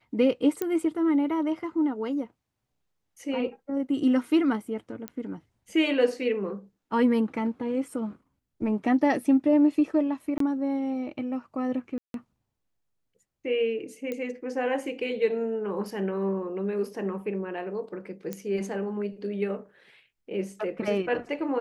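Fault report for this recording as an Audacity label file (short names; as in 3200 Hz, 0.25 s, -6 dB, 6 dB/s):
0.620000	0.620000	pop -15 dBFS
5.080000	5.080000	pop -19 dBFS
10.380000	10.400000	gap 23 ms
11.980000	12.140000	gap 0.162 s
14.120000	14.120000	pop -20 dBFS
18.330000	18.330000	pop -19 dBFS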